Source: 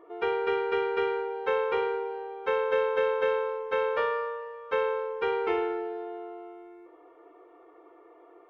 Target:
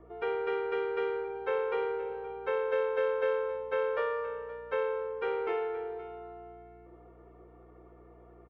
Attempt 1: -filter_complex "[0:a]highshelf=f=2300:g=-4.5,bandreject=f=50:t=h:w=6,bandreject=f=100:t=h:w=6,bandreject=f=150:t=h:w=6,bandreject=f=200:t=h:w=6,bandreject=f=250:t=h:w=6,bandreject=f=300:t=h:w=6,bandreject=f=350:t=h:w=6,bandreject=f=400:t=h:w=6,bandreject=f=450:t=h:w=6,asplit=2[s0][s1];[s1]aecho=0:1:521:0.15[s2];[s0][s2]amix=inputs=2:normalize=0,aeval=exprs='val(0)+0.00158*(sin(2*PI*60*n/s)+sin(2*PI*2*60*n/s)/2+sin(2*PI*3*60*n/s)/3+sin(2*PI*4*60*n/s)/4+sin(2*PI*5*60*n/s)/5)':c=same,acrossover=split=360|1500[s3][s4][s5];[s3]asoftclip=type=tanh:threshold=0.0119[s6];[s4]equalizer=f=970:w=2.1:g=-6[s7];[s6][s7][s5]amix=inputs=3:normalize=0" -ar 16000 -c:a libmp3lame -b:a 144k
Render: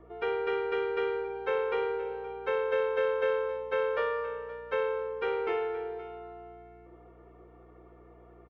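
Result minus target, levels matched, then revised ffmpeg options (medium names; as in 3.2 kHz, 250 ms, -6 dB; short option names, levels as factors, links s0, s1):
saturation: distortion -6 dB; 4 kHz band +3.0 dB
-filter_complex "[0:a]highshelf=f=2300:g=-11.5,bandreject=f=50:t=h:w=6,bandreject=f=100:t=h:w=6,bandreject=f=150:t=h:w=6,bandreject=f=200:t=h:w=6,bandreject=f=250:t=h:w=6,bandreject=f=300:t=h:w=6,bandreject=f=350:t=h:w=6,bandreject=f=400:t=h:w=6,bandreject=f=450:t=h:w=6,asplit=2[s0][s1];[s1]aecho=0:1:521:0.15[s2];[s0][s2]amix=inputs=2:normalize=0,aeval=exprs='val(0)+0.00158*(sin(2*PI*60*n/s)+sin(2*PI*2*60*n/s)/2+sin(2*PI*3*60*n/s)/3+sin(2*PI*4*60*n/s)/4+sin(2*PI*5*60*n/s)/5)':c=same,acrossover=split=360|1500[s3][s4][s5];[s3]asoftclip=type=tanh:threshold=0.00473[s6];[s4]equalizer=f=970:w=2.1:g=-6[s7];[s6][s7][s5]amix=inputs=3:normalize=0" -ar 16000 -c:a libmp3lame -b:a 144k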